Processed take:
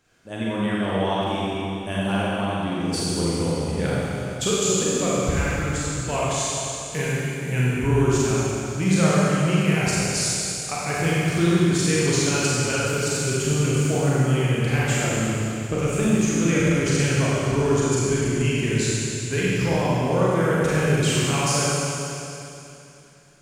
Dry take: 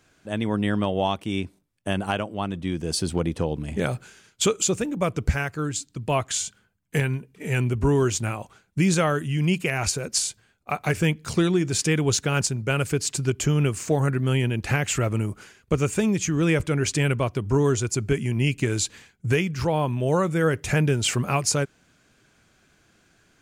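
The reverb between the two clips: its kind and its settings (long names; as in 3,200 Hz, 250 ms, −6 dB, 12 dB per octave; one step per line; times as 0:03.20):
four-comb reverb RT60 2.9 s, combs from 32 ms, DRR −7.5 dB
level −5.5 dB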